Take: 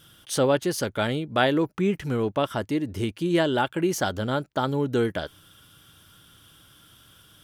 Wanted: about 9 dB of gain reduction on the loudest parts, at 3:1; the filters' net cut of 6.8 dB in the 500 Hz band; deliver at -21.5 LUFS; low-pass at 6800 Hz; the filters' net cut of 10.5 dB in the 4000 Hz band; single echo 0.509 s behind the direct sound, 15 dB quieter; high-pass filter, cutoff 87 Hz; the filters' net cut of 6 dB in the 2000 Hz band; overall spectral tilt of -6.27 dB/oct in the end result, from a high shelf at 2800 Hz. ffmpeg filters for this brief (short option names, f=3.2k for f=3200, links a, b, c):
-af "highpass=87,lowpass=6.8k,equalizer=f=500:t=o:g=-8.5,equalizer=f=2k:t=o:g=-4.5,highshelf=f=2.8k:g=-6,equalizer=f=4k:t=o:g=-7,acompressor=threshold=-34dB:ratio=3,aecho=1:1:509:0.178,volume=15.5dB"